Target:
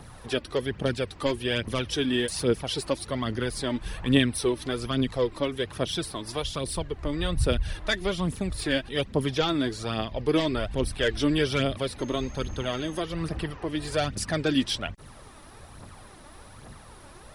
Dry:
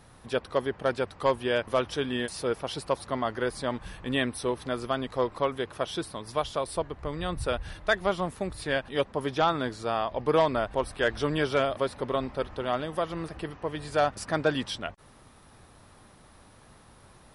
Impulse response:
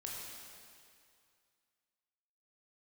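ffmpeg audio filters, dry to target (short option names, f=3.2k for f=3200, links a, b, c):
-filter_complex "[0:a]acrossover=split=410|2000[a][b][c];[b]acompressor=threshold=-44dB:ratio=6[d];[a][d][c]amix=inputs=3:normalize=0,asettb=1/sr,asplit=3[e][f][g];[e]atrim=end=11.994[h];[f]atrim=start=11.99:end=13,asetpts=PTS-STARTPTS,afade=t=in:d=0.004:c=qsin,afade=t=out:st=1.006:d=0.004:c=qsin,aeval=exprs='val(0)+0.00126*sin(2*PI*6400*n/s)':c=same[i];[g]atrim=start=12.996[j];[h][i]acrossfade=d=0.004:c1=hsin:c2=qsin[k];[k][j]acrossfade=d=0.004:c1=qsin:c2=hsin,aphaser=in_gain=1:out_gain=1:delay=3.6:decay=0.49:speed=1.2:type=triangular,volume=5.5dB"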